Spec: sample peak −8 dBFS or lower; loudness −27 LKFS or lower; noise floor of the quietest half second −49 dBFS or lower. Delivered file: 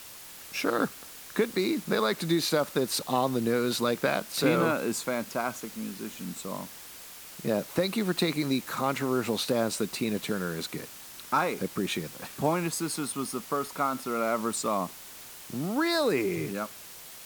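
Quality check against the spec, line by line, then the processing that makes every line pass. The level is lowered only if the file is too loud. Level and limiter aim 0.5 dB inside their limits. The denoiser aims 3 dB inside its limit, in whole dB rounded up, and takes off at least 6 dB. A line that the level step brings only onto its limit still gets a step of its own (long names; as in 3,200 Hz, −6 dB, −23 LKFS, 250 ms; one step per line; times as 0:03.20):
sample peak −12.5 dBFS: in spec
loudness −29.5 LKFS: in spec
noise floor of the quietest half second −46 dBFS: out of spec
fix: broadband denoise 6 dB, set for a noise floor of −46 dBFS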